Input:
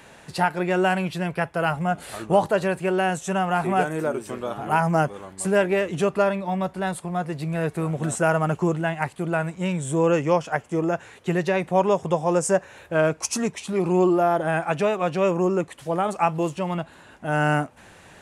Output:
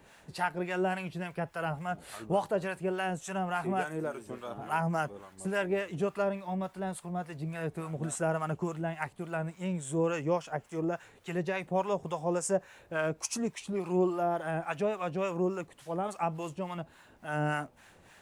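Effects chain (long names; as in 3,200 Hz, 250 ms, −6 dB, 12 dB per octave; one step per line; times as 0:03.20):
background noise pink −61 dBFS
two-band tremolo in antiphase 3.5 Hz, depth 70%, crossover 790 Hz
level −6.5 dB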